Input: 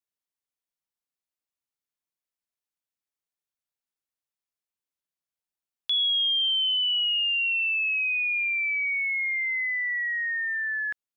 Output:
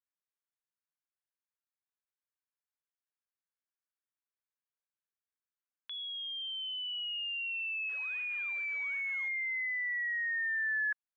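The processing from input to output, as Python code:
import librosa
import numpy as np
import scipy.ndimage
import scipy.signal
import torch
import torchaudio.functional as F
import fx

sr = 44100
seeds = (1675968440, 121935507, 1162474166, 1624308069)

y = fx.clip_1bit(x, sr, at=(7.89, 9.28))
y = fx.cabinet(y, sr, low_hz=500.0, low_slope=24, high_hz=2700.0, hz=(710.0, 1100.0, 1600.0), db=(-7, 4, 8))
y = F.gain(torch.from_numpy(y), -8.5).numpy()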